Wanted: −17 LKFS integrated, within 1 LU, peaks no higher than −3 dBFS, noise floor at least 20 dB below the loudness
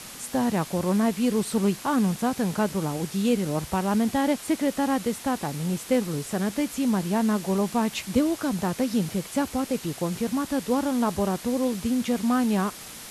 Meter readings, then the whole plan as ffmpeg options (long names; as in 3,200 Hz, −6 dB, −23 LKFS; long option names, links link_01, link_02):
background noise floor −41 dBFS; target noise floor −46 dBFS; integrated loudness −26.0 LKFS; sample peak −11.0 dBFS; target loudness −17.0 LKFS
→ -af "afftdn=noise_reduction=6:noise_floor=-41"
-af "volume=9dB,alimiter=limit=-3dB:level=0:latency=1"